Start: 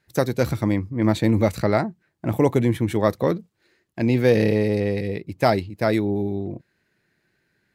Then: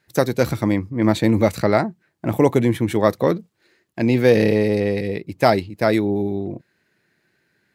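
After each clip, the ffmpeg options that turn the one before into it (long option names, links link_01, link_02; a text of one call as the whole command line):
ffmpeg -i in.wav -af "lowshelf=frequency=71:gain=-12,volume=3.5dB" out.wav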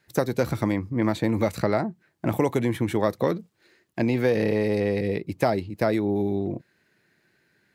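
ffmpeg -i in.wav -filter_complex "[0:a]acrossover=split=750|1500[link_01][link_02][link_03];[link_01]acompressor=threshold=-21dB:ratio=4[link_04];[link_02]acompressor=threshold=-31dB:ratio=4[link_05];[link_03]acompressor=threshold=-38dB:ratio=4[link_06];[link_04][link_05][link_06]amix=inputs=3:normalize=0" out.wav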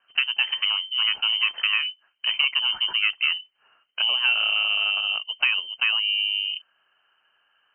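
ffmpeg -i in.wav -af "lowpass=frequency=2700:width_type=q:width=0.5098,lowpass=frequency=2700:width_type=q:width=0.6013,lowpass=frequency=2700:width_type=q:width=0.9,lowpass=frequency=2700:width_type=q:width=2.563,afreqshift=-3200" out.wav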